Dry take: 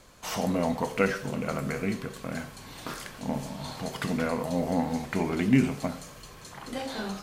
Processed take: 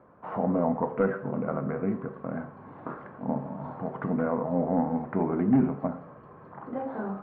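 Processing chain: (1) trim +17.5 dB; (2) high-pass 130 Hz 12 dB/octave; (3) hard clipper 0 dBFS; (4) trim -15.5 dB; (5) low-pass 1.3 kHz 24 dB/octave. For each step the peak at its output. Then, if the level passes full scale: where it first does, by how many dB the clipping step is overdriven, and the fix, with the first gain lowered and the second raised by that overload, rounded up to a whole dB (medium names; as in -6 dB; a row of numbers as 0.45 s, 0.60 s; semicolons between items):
+8.0 dBFS, +8.5 dBFS, 0.0 dBFS, -15.5 dBFS, -14.5 dBFS; step 1, 8.5 dB; step 1 +8.5 dB, step 4 -6.5 dB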